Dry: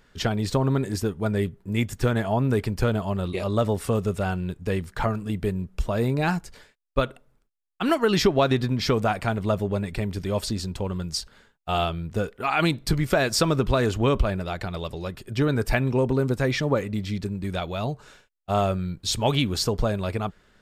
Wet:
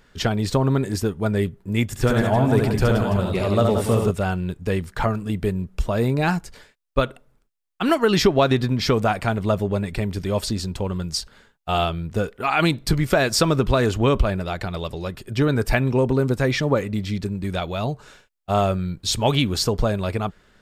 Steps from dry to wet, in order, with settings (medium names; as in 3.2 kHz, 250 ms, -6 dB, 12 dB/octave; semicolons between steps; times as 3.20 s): 1.87–4.11 s: reverse bouncing-ball echo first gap 70 ms, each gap 1.5×, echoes 5; trim +3 dB